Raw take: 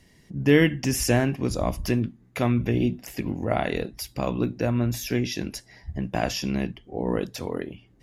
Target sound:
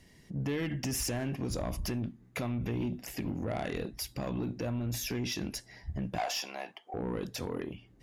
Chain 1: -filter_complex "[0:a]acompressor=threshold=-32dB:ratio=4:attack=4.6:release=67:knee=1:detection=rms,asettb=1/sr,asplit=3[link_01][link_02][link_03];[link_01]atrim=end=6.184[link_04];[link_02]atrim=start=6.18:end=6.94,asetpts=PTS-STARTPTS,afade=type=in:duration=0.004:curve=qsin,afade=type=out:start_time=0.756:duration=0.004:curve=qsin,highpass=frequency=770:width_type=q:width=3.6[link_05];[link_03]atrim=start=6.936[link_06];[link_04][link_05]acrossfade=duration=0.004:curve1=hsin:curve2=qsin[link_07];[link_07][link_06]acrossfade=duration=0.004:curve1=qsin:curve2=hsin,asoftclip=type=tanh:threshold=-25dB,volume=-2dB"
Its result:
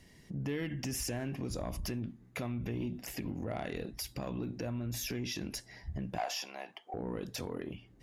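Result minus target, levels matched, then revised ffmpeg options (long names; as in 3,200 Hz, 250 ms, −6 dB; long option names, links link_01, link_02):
downward compressor: peak gain reduction +5 dB
-filter_complex "[0:a]acompressor=threshold=-25.5dB:ratio=4:attack=4.6:release=67:knee=1:detection=rms,asettb=1/sr,asplit=3[link_01][link_02][link_03];[link_01]atrim=end=6.184[link_04];[link_02]atrim=start=6.18:end=6.94,asetpts=PTS-STARTPTS,afade=type=in:duration=0.004:curve=qsin,afade=type=out:start_time=0.756:duration=0.004:curve=qsin,highpass=frequency=770:width_type=q:width=3.6[link_05];[link_03]atrim=start=6.936[link_06];[link_04][link_05]acrossfade=duration=0.004:curve1=hsin:curve2=qsin[link_07];[link_07][link_06]acrossfade=duration=0.004:curve1=qsin:curve2=hsin,asoftclip=type=tanh:threshold=-25dB,volume=-2dB"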